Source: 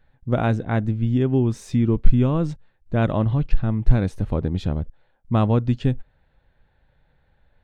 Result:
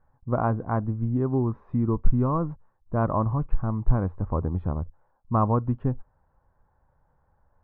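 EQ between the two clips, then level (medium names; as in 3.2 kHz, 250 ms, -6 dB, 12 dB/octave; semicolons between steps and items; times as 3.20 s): four-pole ladder low-pass 1.2 kHz, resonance 65%; peaking EQ 86 Hz +5.5 dB 0.27 oct; +5.5 dB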